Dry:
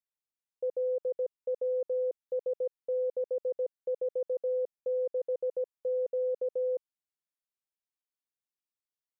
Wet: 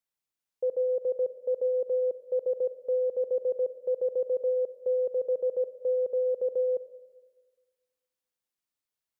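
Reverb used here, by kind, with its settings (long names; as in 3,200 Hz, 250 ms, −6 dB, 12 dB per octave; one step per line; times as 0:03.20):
four-comb reverb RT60 1.5 s, combs from 31 ms, DRR 14 dB
level +4 dB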